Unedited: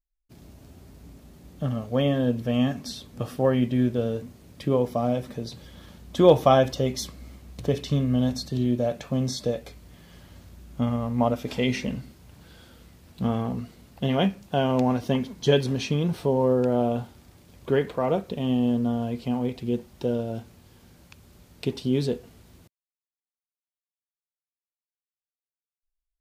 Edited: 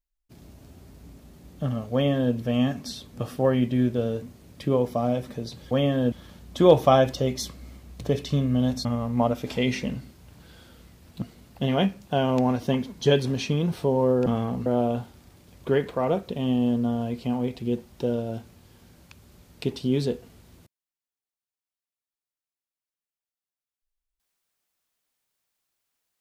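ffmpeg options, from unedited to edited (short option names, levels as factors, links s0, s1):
-filter_complex "[0:a]asplit=7[s0][s1][s2][s3][s4][s5][s6];[s0]atrim=end=5.712[s7];[s1]atrim=start=1.928:end=2.342[s8];[s2]atrim=start=5.708:end=8.442[s9];[s3]atrim=start=10.858:end=13.232[s10];[s4]atrim=start=13.628:end=16.672[s11];[s5]atrim=start=13.228:end=13.632[s12];[s6]atrim=start=16.668[s13];[s7][s8]acrossfade=d=0.004:c1=hsin:c2=hsin[s14];[s14][s9]acrossfade=d=0.004:c1=hsin:c2=hsin[s15];[s15][s10]acrossfade=d=0.004:c1=hsin:c2=hsin[s16];[s16][s11]acrossfade=d=0.004:c1=hsin:c2=hsin[s17];[s17][s12]acrossfade=d=0.004:c1=hsin:c2=hsin[s18];[s18][s13]acrossfade=d=0.004:c1=hsin:c2=hsin"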